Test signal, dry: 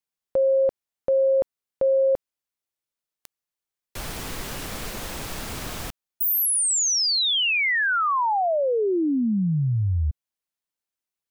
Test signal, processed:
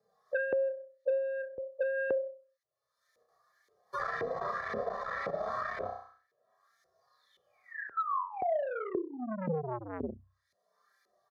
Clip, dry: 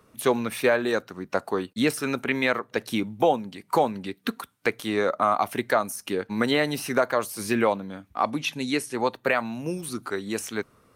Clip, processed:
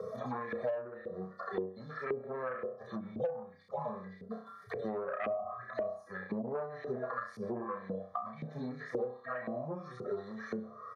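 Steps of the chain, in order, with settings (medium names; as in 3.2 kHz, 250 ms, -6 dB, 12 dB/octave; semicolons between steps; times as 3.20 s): harmonic-percussive separation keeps harmonic; Butterworth band-stop 2.7 kHz, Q 1.5; peaking EQ 8.1 kHz -9.5 dB 0.28 oct; on a send: flutter echo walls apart 5.5 m, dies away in 0.42 s; on the sum: low-pass that closes with the level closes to 410 Hz, closed at -20.5 dBFS; bass shelf 240 Hz +6 dB; comb 1.7 ms, depth 95%; saturation -20 dBFS; LFO band-pass saw up 1.9 Hz 420–2300 Hz; high-pass 43 Hz; three bands compressed up and down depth 100%; trim +2.5 dB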